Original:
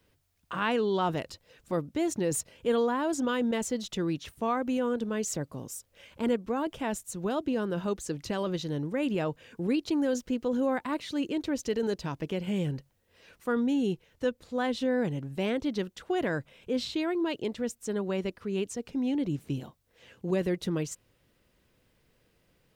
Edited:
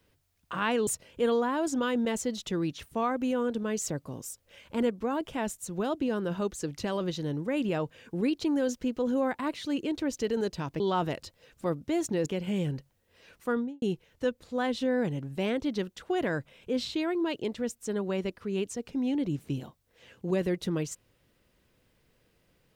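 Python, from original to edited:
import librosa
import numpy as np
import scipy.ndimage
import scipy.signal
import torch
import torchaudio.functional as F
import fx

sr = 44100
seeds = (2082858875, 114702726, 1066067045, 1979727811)

y = fx.studio_fade_out(x, sr, start_s=13.49, length_s=0.33)
y = fx.edit(y, sr, fx.move(start_s=0.87, length_s=1.46, to_s=12.26), tone=tone)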